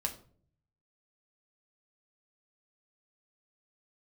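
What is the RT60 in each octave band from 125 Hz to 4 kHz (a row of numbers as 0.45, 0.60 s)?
1.1, 0.75, 0.60, 0.40, 0.35, 0.30 s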